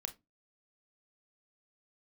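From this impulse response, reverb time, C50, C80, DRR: 0.20 s, 18.0 dB, 27.5 dB, 8.0 dB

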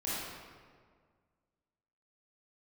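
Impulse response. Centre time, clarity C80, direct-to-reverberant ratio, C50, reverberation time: 127 ms, -1.0 dB, -9.5 dB, -4.5 dB, 1.8 s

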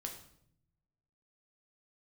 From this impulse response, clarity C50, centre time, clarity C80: 7.5 dB, 20 ms, 11.0 dB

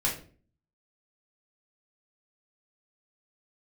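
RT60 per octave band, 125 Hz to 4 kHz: 0.65 s, 0.60 s, 0.50 s, 0.35 s, 0.35 s, 0.30 s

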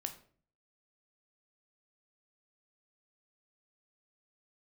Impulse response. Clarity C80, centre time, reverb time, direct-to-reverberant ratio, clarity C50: 16.0 dB, 10 ms, 0.45 s, 6.0 dB, 11.5 dB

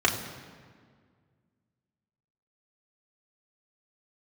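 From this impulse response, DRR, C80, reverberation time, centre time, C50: -2.0 dB, 9.5 dB, 1.8 s, 31 ms, 8.0 dB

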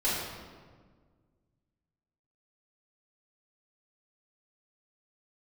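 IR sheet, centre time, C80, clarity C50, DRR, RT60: 91 ms, 2.0 dB, -0.5 dB, -11.0 dB, 1.6 s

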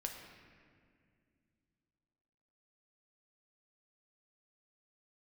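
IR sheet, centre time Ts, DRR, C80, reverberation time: 56 ms, 2.0 dB, 5.5 dB, 2.2 s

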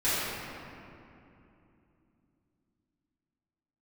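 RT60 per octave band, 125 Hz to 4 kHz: 4.0 s, 4.2 s, 3.0 s, 2.7 s, 2.3 s, 1.5 s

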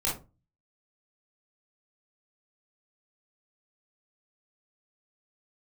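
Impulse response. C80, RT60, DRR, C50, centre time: 14.5 dB, 0.30 s, -5.5 dB, 5.5 dB, 33 ms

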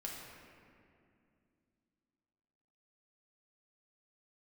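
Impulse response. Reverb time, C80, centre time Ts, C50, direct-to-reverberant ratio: 2.4 s, 2.0 dB, 104 ms, 0.5 dB, -3.5 dB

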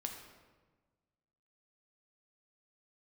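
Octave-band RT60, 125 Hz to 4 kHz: 1.9 s, 1.6 s, 1.4 s, 1.3 s, 1.1 s, 0.90 s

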